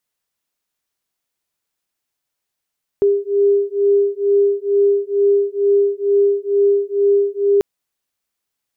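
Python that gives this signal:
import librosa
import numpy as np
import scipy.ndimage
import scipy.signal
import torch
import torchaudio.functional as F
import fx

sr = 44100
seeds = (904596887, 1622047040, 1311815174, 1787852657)

y = fx.two_tone_beats(sr, length_s=4.59, hz=401.0, beat_hz=2.2, level_db=-15.5)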